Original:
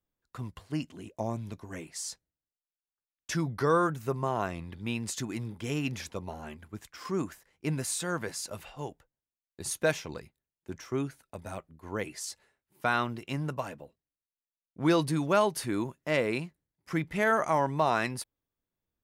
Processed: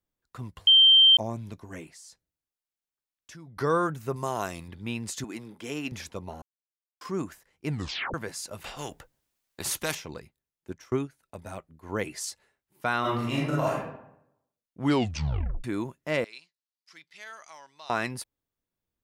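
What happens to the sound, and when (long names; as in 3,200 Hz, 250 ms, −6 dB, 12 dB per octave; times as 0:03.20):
0:00.67–0:01.17: beep over 3,140 Hz −13 dBFS
0:01.89–0:03.57: downward compressor 2.5 to 1, threshold −52 dBFS
0:04.16–0:04.68: bass and treble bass −3 dB, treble +14 dB
0:05.24–0:05.92: high-pass filter 240 Hz
0:06.42–0:07.01: silence
0:07.69: tape stop 0.45 s
0:08.64–0:09.95: every bin compressed towards the loudest bin 2 to 1
0:10.70–0:11.23: transient designer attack +6 dB, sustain −10 dB
0:11.89–0:12.30: clip gain +3.5 dB
0:13.00–0:13.79: thrown reverb, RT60 0.8 s, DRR −7 dB
0:14.80: tape stop 0.84 s
0:16.24–0:17.90: resonant band-pass 4,600 Hz, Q 2.4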